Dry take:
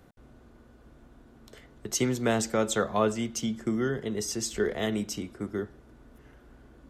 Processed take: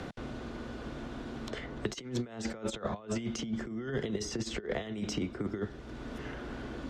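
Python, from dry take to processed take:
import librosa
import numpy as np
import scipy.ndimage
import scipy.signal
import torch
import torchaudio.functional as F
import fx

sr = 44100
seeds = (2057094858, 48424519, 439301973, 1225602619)

y = fx.over_compress(x, sr, threshold_db=-34.0, ratio=-0.5)
y = scipy.signal.sosfilt(scipy.signal.butter(2, 4600.0, 'lowpass', fs=sr, output='sos'), y)
y = fx.band_squash(y, sr, depth_pct=70)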